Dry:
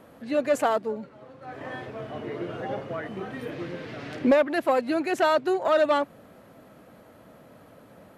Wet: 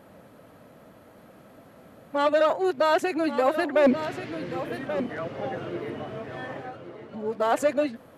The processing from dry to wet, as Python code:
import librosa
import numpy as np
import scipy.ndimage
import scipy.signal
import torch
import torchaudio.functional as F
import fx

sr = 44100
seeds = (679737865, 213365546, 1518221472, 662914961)

y = np.flip(x).copy()
y = y + 10.0 ** (-10.5 / 20.0) * np.pad(y, (int(1133 * sr / 1000.0), 0))[:len(y)]